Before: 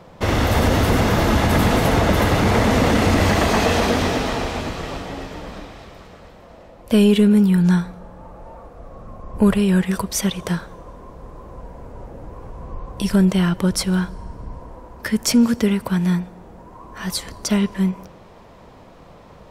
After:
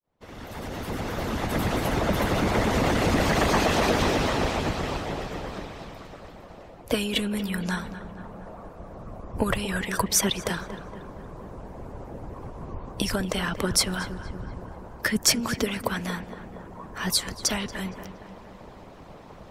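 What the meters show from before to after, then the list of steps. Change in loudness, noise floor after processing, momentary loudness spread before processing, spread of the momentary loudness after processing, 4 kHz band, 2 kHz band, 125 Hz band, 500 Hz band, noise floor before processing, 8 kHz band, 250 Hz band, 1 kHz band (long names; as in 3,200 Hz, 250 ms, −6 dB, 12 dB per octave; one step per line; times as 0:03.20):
−7.5 dB, −46 dBFS, 20 LU, 20 LU, −2.0 dB, −4.0 dB, −10.5 dB, −6.5 dB, −45 dBFS, 0.0 dB, −11.0 dB, −5.5 dB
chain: fade in at the beginning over 4.12 s
in parallel at −2 dB: brickwall limiter −15.5 dBFS, peak gain reduction 8.5 dB
on the sum: harmonic and percussive parts rebalanced harmonic −18 dB
feedback echo with a low-pass in the loop 233 ms, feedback 65%, low-pass 2,400 Hz, level −12 dB
level −1.5 dB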